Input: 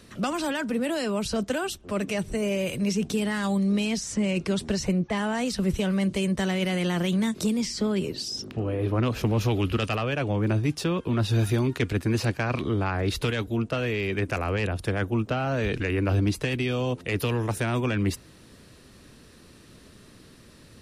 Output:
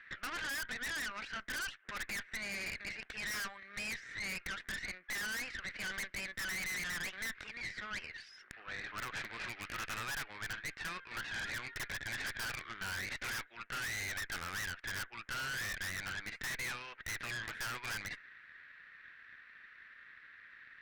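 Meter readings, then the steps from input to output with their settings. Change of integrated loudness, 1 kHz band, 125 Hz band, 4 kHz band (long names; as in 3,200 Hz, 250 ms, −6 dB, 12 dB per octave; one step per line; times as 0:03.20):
−13.0 dB, −12.0 dB, −26.5 dB, −8.5 dB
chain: flat-topped band-pass 1,800 Hz, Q 2.7
wave folding −34.5 dBFS
harmonic generator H 4 −10 dB, 5 −9 dB, 8 −17 dB, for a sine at −34.5 dBFS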